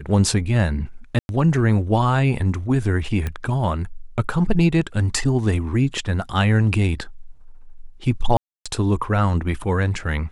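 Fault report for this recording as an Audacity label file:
1.190000	1.290000	dropout 101 ms
3.270000	3.270000	pop -13 dBFS
8.370000	8.660000	dropout 286 ms

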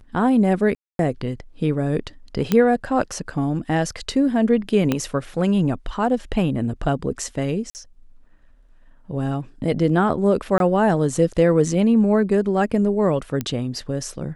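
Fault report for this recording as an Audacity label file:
0.750000	0.990000	dropout 242 ms
2.520000	2.520000	pop -6 dBFS
4.920000	4.920000	pop -7 dBFS
7.700000	7.750000	dropout 49 ms
10.580000	10.600000	dropout 22 ms
13.410000	13.410000	pop -11 dBFS

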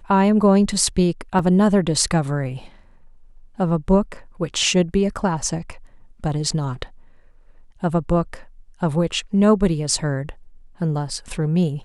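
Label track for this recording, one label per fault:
1.390000	1.390000	dropout 3.3 ms

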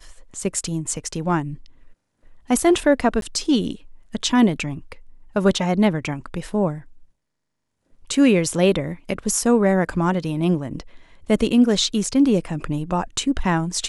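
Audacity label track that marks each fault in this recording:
3.210000	3.220000	dropout

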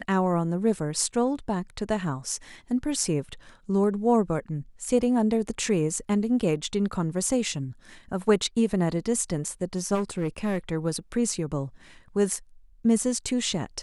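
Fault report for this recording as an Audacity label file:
9.940000	10.580000	clipped -22 dBFS

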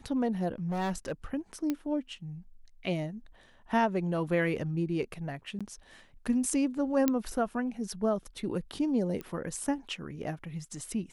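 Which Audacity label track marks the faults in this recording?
0.680000	1.120000	clipped -28.5 dBFS
1.700000	1.700000	pop -18 dBFS
5.590000	5.610000	dropout 16 ms
7.080000	7.080000	pop -12 dBFS
9.210000	9.210000	pop -25 dBFS

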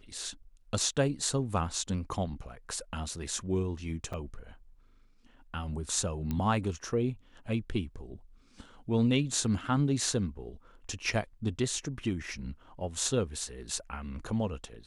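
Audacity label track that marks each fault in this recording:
4.130000	4.140000	dropout 5.7 ms
6.310000	6.310000	pop -20 dBFS

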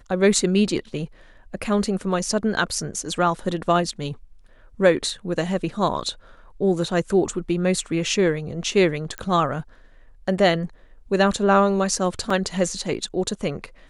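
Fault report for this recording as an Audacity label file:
9.180000	9.180000	pop -14 dBFS
12.300000	12.300000	dropout 4.2 ms

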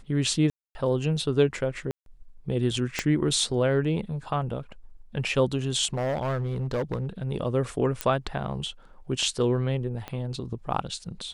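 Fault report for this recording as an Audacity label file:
0.500000	0.750000	dropout 250 ms
1.910000	2.060000	dropout 152 ms
2.990000	2.990000	pop -10 dBFS
5.930000	7.230000	clipped -23.5 dBFS
8.010000	8.010000	pop -10 dBFS
10.080000	10.080000	pop -20 dBFS

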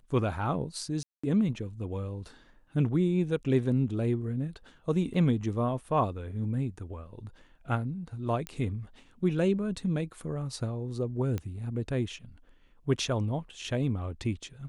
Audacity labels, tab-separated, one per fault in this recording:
1.030000	1.240000	dropout 205 ms
5.140000	5.140000	dropout 4.3 ms
8.470000	8.470000	pop -20 dBFS
11.380000	11.380000	pop -21 dBFS

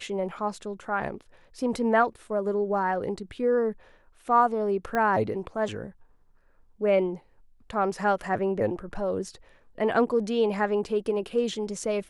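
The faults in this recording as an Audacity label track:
4.950000	4.950000	pop -16 dBFS

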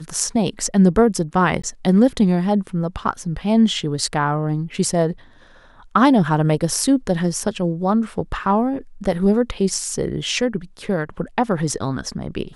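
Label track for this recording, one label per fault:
1.620000	1.640000	dropout 15 ms

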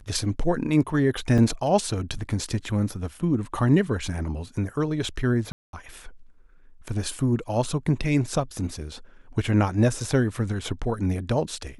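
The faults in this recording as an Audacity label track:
1.380000	1.380000	dropout 3.6 ms
5.520000	5.730000	dropout 212 ms

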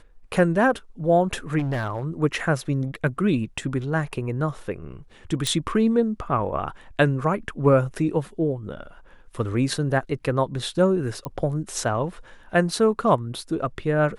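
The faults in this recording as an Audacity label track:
1.580000	2.050000	clipped -21.5 dBFS
5.470000	5.470000	pop
11.250000	11.250000	pop -15 dBFS

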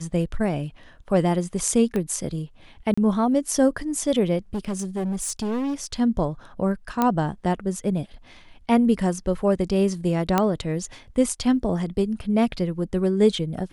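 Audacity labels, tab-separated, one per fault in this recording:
1.960000	1.960000	pop -15 dBFS
2.940000	2.980000	dropout 35 ms
4.540000	5.860000	clipped -23 dBFS
7.020000	7.020000	pop -8 dBFS
10.380000	10.380000	pop -6 dBFS

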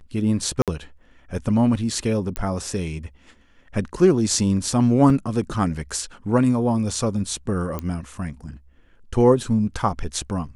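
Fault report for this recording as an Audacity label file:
0.620000	0.680000	dropout 57 ms
2.360000	2.360000	pop -11 dBFS
5.100000	5.100000	dropout 2.1 ms
7.790000	7.790000	pop -14 dBFS

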